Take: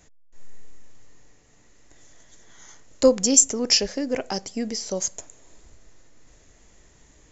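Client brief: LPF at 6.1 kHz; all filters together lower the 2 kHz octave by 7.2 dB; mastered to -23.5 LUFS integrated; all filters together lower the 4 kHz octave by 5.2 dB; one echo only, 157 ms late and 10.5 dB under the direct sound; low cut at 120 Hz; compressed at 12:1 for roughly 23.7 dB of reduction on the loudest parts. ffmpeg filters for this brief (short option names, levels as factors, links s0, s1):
-af "highpass=120,lowpass=6100,equalizer=f=2000:t=o:g=-8,equalizer=f=4000:t=o:g=-4,acompressor=threshold=0.0178:ratio=12,aecho=1:1:157:0.299,volume=6.68"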